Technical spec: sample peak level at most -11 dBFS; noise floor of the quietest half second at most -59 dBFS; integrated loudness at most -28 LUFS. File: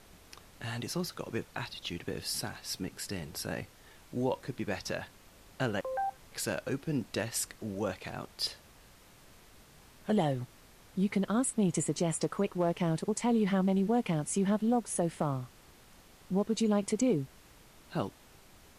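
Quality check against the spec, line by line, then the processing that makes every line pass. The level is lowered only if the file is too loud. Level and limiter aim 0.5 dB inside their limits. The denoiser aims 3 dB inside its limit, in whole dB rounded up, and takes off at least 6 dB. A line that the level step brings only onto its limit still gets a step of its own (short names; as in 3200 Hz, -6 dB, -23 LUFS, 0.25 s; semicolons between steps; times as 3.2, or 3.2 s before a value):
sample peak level -18.5 dBFS: OK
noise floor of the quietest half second -57 dBFS: fail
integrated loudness -33.0 LUFS: OK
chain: denoiser 6 dB, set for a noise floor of -57 dBFS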